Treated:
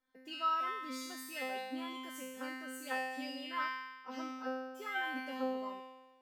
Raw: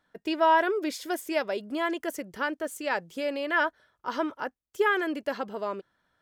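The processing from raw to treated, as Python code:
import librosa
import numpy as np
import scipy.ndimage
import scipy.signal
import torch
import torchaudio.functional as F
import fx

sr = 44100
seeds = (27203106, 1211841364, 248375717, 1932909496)

y = fx.comb_fb(x, sr, f0_hz=260.0, decay_s=1.2, harmonics='all', damping=0.0, mix_pct=100)
y = y * 10.0 ** (13.0 / 20.0)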